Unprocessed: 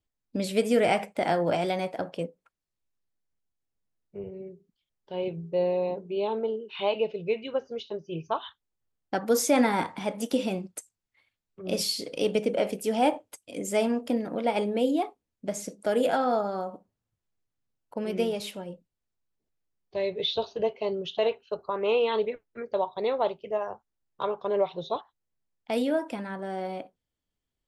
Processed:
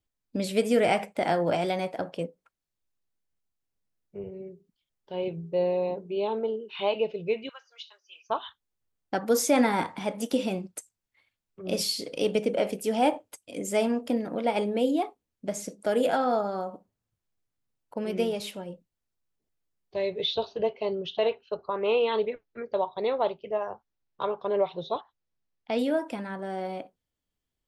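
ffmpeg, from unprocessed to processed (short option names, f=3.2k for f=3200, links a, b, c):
-filter_complex "[0:a]asettb=1/sr,asplit=3[a][b][c];[a]atrim=end=7.494[d];[b]atrim=start=7.49:end=8.3,asetpts=PTS-STARTPTS,afade=t=in:d=0.004:c=qsin,afade=t=out:st=0.806:d=0.004:c=qsin,highpass=f=1.2k:w=0.5412,highpass=f=1.2k:w=1.3066[e];[c]atrim=start=8.296[f];[d][e]acrossfade=d=0.004:c1=hsin:c2=qsin[g];[g][f]acrossfade=d=0.004:c1=qsin:c2=hsin,asettb=1/sr,asplit=3[h][i][j];[h]atrim=end=20.354[k];[i]atrim=start=20.35:end=25.79,asetpts=PTS-STARTPTS,afade=t=in:d=0.004:c=qsin,afade=t=out:st=5.436:d=0.004:c=qsin,lowpass=f=5.7k:w=0.5412,lowpass=f=5.7k:w=1.3066[l];[j]atrim=start=25.786[m];[k][l]acrossfade=d=0.004:c1=hsin:c2=qsin[n];[n][m]acrossfade=d=0.004:c1=qsin:c2=hsin"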